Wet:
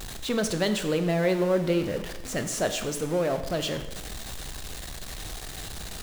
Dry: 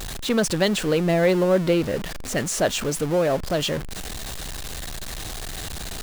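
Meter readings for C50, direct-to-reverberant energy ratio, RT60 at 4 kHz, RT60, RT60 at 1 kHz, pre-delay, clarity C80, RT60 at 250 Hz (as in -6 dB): 10.5 dB, 8.0 dB, 0.90 s, 0.95 s, 0.95 s, 12 ms, 12.5 dB, 1.0 s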